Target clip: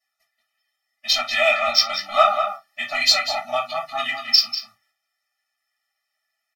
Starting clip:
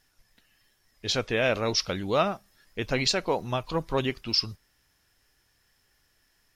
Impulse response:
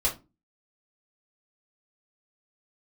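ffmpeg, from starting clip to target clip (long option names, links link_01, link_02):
-filter_complex "[0:a]asettb=1/sr,asplit=3[link_01][link_02][link_03];[link_01]atrim=end=1.384[link_04];[link_02]atrim=start=1.38:end=1.97,asetpts=PTS-STARTPTS,afade=type=in:duration=0.004:curve=qsin,afade=type=out:start_time=0.586:duration=0.004:curve=qsin,lowpass=8000[link_05];[link_03]atrim=start=1.966[link_06];[link_04][link_05]acrossfade=duration=0.004:curve1=hsin:curve2=qsin[link_07];[link_07][link_06]acrossfade=duration=0.004:curve1=qsin:curve2=hsin,agate=range=-15dB:threshold=-57dB:ratio=16:detection=peak,highpass=1100,asplit=2[link_08][link_09];[link_09]adelay=192.4,volume=-7dB,highshelf=frequency=4000:gain=-4.33[link_10];[link_08][link_10]amix=inputs=2:normalize=0,asplit=2[link_11][link_12];[link_12]adynamicsmooth=sensitivity=4:basefreq=3700,volume=1dB[link_13];[link_11][link_13]amix=inputs=2:normalize=0[link_14];[1:a]atrim=start_sample=2205,atrim=end_sample=3528[link_15];[link_14][link_15]afir=irnorm=-1:irlink=0,afftfilt=real='re*eq(mod(floor(b*sr/1024/290),2),0)':imag='im*eq(mod(floor(b*sr/1024/290),2),0)':win_size=1024:overlap=0.75"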